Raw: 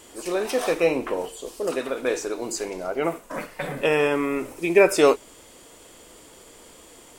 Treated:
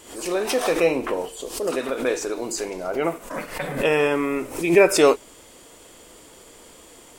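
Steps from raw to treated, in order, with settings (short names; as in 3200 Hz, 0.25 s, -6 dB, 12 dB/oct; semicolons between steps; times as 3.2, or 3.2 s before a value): backwards sustainer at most 110 dB/s; gain +1 dB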